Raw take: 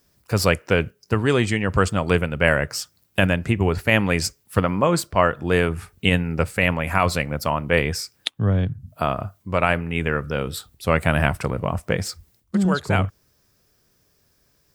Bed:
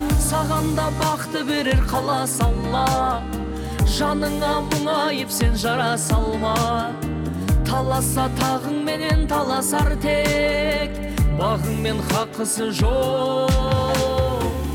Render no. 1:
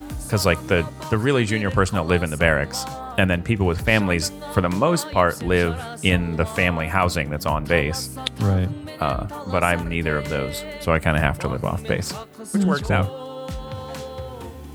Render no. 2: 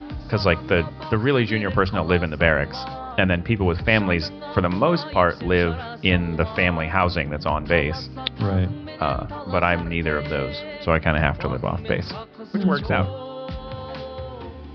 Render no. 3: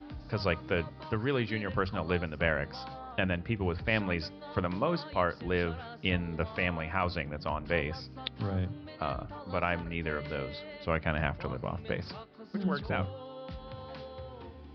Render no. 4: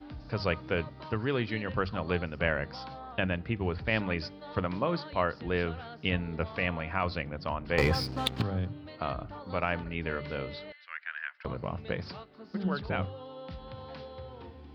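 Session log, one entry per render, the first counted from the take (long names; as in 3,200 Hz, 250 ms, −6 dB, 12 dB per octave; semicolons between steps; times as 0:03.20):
mix in bed −13 dB
Butterworth low-pass 5,000 Hz 72 dB per octave; mains-hum notches 50/100/150/200 Hz
level −11 dB
0:07.78–0:08.42: leveller curve on the samples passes 3; 0:10.72–0:11.45: four-pole ladder high-pass 1,500 Hz, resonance 65%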